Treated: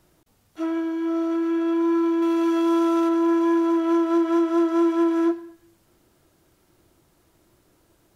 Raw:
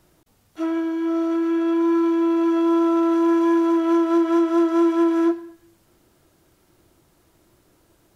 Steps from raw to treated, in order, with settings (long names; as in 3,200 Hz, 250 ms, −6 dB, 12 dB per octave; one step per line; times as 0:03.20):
0:02.22–0:03.09: high-shelf EQ 2,700 Hz +9 dB
level −2 dB